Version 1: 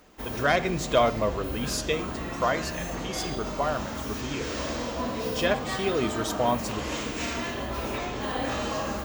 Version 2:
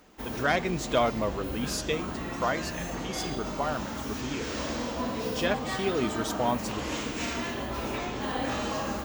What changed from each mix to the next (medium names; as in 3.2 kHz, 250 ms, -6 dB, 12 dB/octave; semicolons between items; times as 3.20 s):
reverb: off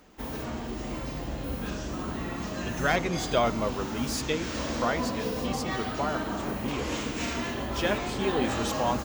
speech: entry +2.40 s; background: add bass shelf 210 Hz +3.5 dB